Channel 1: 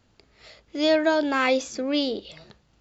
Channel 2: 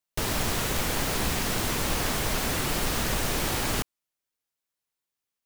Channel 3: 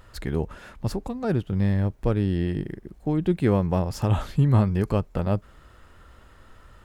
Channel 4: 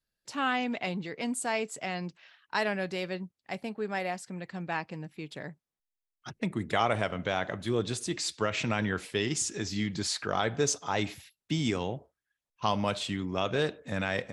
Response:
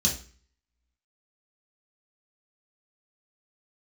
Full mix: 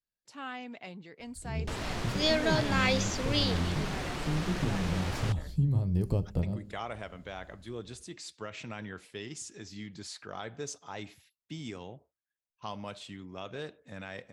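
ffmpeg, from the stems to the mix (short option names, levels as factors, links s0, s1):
-filter_complex "[0:a]equalizer=f=5700:w=0.33:g=11,adelay=1400,volume=0.316[s0];[1:a]adynamicsmooth=sensitivity=1.5:basefreq=4800,adelay=1500,volume=0.447[s1];[2:a]dynaudnorm=f=130:g=9:m=2.66,equalizer=f=1500:t=o:w=1.9:g=-14.5,acompressor=threshold=0.158:ratio=6,adelay=1200,volume=0.501,asplit=2[s2][s3];[s3]volume=0.0668[s4];[3:a]volume=0.266,asplit=2[s5][s6];[s6]apad=whole_len=354670[s7];[s2][s7]sidechaincompress=threshold=0.00251:ratio=4:attack=32:release=1260[s8];[4:a]atrim=start_sample=2205[s9];[s4][s9]afir=irnorm=-1:irlink=0[s10];[s0][s1][s8][s5][s10]amix=inputs=5:normalize=0"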